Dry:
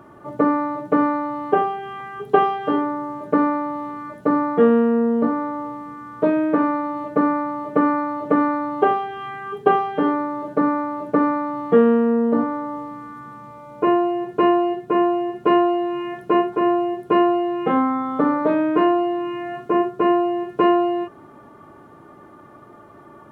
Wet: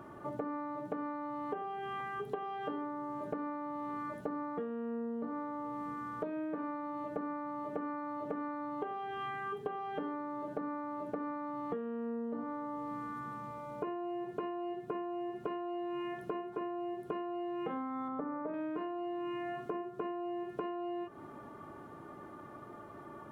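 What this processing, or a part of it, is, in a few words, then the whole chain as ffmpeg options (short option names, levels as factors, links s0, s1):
serial compression, leveller first: -filter_complex "[0:a]acompressor=threshold=0.1:ratio=2.5,acompressor=threshold=0.0282:ratio=10,asettb=1/sr,asplit=3[s0][s1][s2];[s0]atrim=end=18.084[s3];[s1]atrim=start=18.08:end=18.54,asetpts=PTS-STARTPTS,afade=t=in:d=0.004:c=qsin,afade=t=out:st=0.456:d=0.004:c=qsin,lowpass=1800[s4];[s2]atrim=start=18.536[s5];[s3][s4]acrossfade=d=0.004:c1=hsin:c2=qsin[s6];[s6][s5]acrossfade=d=0.004:c1=qsin:c2=hsin,volume=0.596"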